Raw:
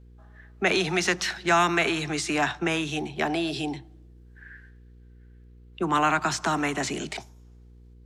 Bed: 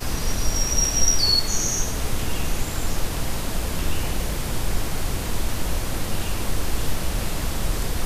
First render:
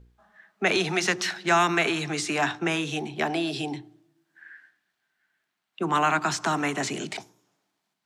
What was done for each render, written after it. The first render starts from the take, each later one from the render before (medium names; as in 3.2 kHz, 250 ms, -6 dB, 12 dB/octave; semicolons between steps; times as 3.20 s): de-hum 60 Hz, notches 8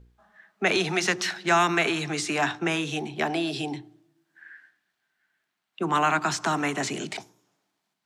no audible change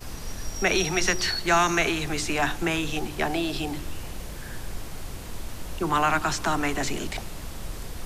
add bed -11 dB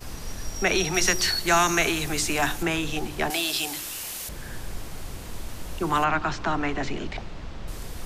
0.94–2.63 s: treble shelf 7.4 kHz +11 dB; 3.30–4.29 s: tilt EQ +4 dB/octave; 6.04–7.68 s: distance through air 160 m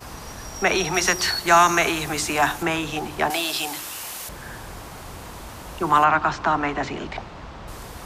high-pass 46 Hz; peaking EQ 990 Hz +8 dB 1.5 oct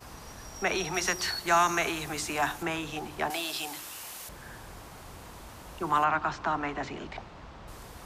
trim -8.5 dB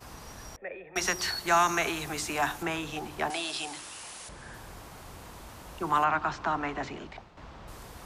0.56–0.96 s: cascade formant filter e; 3.30–4.54 s: brick-wall FIR low-pass 11 kHz; 6.84–7.37 s: fade out, to -9.5 dB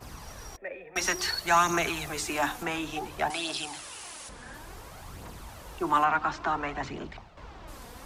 phaser 0.57 Hz, delay 4.3 ms, feedback 43%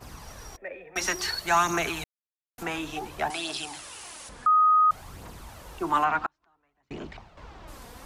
2.04–2.58 s: mute; 4.46–4.91 s: bleep 1.25 kHz -16 dBFS; 6.26–6.91 s: inverted gate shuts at -30 dBFS, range -39 dB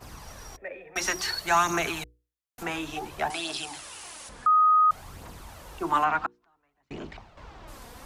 hum notches 60/120/180/240/300/360/420/480 Hz